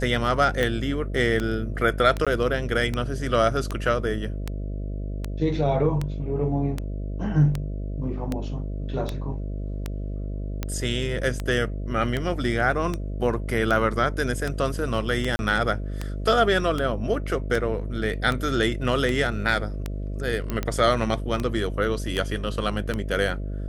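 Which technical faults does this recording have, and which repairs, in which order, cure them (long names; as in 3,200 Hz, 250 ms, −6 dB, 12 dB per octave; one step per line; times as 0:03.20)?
mains buzz 50 Hz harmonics 13 −30 dBFS
scratch tick 78 rpm
0:02.25–0:02.27: drop-out 16 ms
0:15.36–0:15.39: drop-out 31 ms
0:20.50: click −14 dBFS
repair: click removal
hum removal 50 Hz, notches 13
repair the gap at 0:02.25, 16 ms
repair the gap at 0:15.36, 31 ms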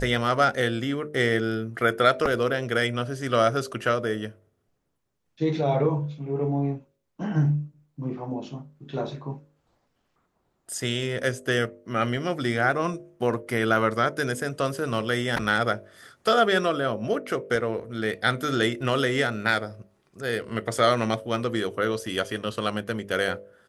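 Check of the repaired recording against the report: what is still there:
none of them is left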